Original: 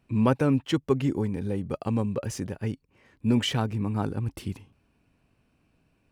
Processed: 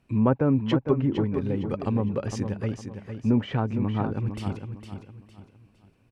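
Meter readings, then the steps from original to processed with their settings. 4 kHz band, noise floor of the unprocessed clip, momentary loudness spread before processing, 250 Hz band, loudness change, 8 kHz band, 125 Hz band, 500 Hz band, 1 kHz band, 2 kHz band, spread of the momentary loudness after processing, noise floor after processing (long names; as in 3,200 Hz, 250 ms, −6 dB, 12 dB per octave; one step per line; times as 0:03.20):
−7.5 dB, −69 dBFS, 10 LU, +1.5 dB, +1.5 dB, −6.5 dB, +2.0 dB, +1.5 dB, +1.0 dB, −2.0 dB, 14 LU, −61 dBFS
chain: treble cut that deepens with the level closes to 1,300 Hz, closed at −20.5 dBFS
on a send: repeating echo 458 ms, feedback 34%, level −8 dB
on the sum: level +1 dB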